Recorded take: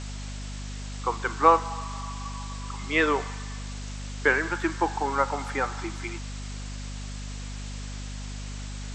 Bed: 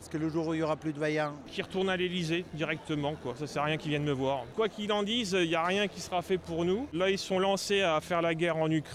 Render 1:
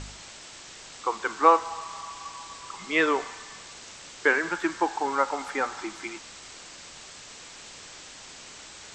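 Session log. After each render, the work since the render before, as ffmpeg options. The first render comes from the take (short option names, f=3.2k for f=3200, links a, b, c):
-af "bandreject=f=50:t=h:w=4,bandreject=f=100:t=h:w=4,bandreject=f=150:t=h:w=4,bandreject=f=200:t=h:w=4,bandreject=f=250:t=h:w=4"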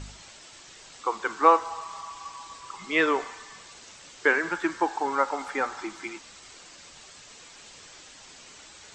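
-af "afftdn=nr=6:nf=-46"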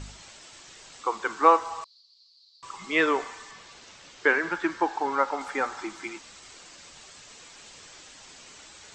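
-filter_complex "[0:a]asettb=1/sr,asplit=3[a][b][c];[a]atrim=end=1.844[d];[b]atrim=start=1.84:end=2.63,asetpts=PTS-STARTPTS,afade=t=in:d=0.004:c=qsin,afade=t=out:st=0.786:d=0.004:c=qsin,asuperpass=centerf=4400:order=4:qfactor=6.1[e];[c]atrim=start=2.626[f];[d][e]acrossfade=d=0.004:c1=hsin:c2=qsin[g];[g][f]acrossfade=d=0.004:c1=qsin:c2=hsin,asettb=1/sr,asplit=3[h][i][j];[h]atrim=end=3.514[k];[i]atrim=start=3.51:end=5.41,asetpts=PTS-STARTPTS,afade=t=in:d=0.004:c=qsin,afade=t=out:st=1.896:d=0.004:c=qsin,lowpass=5.9k[l];[j]atrim=start=5.406[m];[k][l]acrossfade=d=0.004:c1=hsin:c2=qsin[n];[n][m]acrossfade=d=0.004:c1=qsin:c2=hsin"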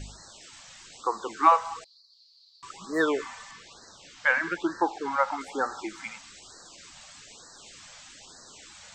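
-filter_complex "[0:a]acrossover=split=2500[a][b];[b]volume=26.5dB,asoftclip=hard,volume=-26.5dB[c];[a][c]amix=inputs=2:normalize=0,afftfilt=real='re*(1-between(b*sr/1024,330*pow(2800/330,0.5+0.5*sin(2*PI*1.1*pts/sr))/1.41,330*pow(2800/330,0.5+0.5*sin(2*PI*1.1*pts/sr))*1.41))':imag='im*(1-between(b*sr/1024,330*pow(2800/330,0.5+0.5*sin(2*PI*1.1*pts/sr))/1.41,330*pow(2800/330,0.5+0.5*sin(2*PI*1.1*pts/sr))*1.41))':win_size=1024:overlap=0.75"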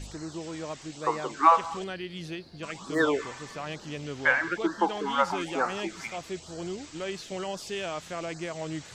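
-filter_complex "[1:a]volume=-6.5dB[a];[0:a][a]amix=inputs=2:normalize=0"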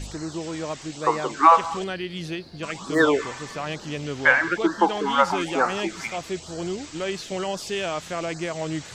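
-af "volume=6dB,alimiter=limit=-3dB:level=0:latency=1"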